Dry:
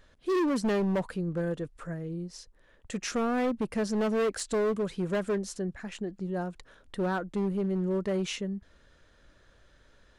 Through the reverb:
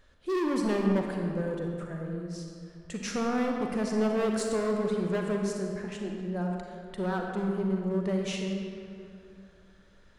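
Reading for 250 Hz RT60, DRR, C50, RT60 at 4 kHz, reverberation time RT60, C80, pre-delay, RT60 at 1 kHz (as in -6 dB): 2.7 s, 1.0 dB, 2.0 dB, 1.5 s, 2.6 s, 3.0 dB, 35 ms, 2.6 s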